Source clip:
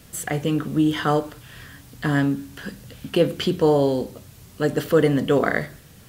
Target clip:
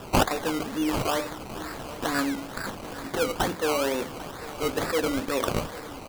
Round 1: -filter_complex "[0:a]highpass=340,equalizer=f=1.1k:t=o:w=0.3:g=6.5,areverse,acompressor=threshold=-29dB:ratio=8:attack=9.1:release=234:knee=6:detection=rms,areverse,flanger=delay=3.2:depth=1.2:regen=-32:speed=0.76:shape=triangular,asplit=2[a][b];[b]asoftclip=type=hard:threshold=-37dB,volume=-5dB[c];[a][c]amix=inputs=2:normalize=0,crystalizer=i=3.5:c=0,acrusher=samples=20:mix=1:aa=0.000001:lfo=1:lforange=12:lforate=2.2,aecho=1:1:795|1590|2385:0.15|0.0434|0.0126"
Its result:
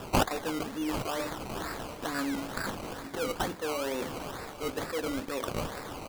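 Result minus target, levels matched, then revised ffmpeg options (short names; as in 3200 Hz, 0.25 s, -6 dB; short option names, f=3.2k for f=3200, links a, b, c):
compressor: peak gain reduction +9 dB
-filter_complex "[0:a]highpass=340,equalizer=f=1.1k:t=o:w=0.3:g=6.5,areverse,acompressor=threshold=-18.5dB:ratio=8:attack=9.1:release=234:knee=6:detection=rms,areverse,flanger=delay=3.2:depth=1.2:regen=-32:speed=0.76:shape=triangular,asplit=2[a][b];[b]asoftclip=type=hard:threshold=-37dB,volume=-5dB[c];[a][c]amix=inputs=2:normalize=0,crystalizer=i=3.5:c=0,acrusher=samples=20:mix=1:aa=0.000001:lfo=1:lforange=12:lforate=2.2,aecho=1:1:795|1590|2385:0.15|0.0434|0.0126"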